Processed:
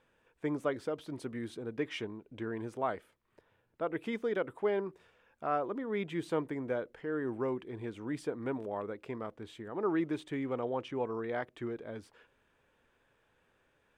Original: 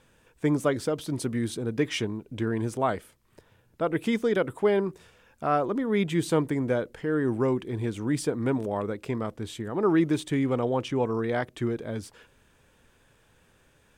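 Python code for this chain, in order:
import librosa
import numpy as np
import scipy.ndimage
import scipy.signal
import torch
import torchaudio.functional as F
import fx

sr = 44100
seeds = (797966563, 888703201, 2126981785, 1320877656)

y = fx.bass_treble(x, sr, bass_db=-8, treble_db=-12)
y = y * 10.0 ** (-7.0 / 20.0)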